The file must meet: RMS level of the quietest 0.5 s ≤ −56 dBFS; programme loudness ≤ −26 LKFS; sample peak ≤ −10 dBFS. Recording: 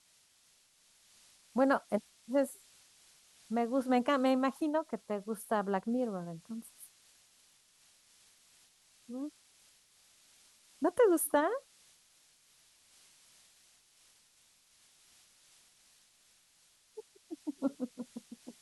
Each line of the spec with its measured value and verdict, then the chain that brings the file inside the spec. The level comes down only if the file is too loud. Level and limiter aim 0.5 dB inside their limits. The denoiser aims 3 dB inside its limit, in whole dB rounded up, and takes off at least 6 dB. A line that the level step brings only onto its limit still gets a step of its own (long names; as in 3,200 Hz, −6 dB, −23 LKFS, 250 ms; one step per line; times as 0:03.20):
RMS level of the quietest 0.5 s −68 dBFS: in spec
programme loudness −33.5 LKFS: in spec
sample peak −17.5 dBFS: in spec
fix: no processing needed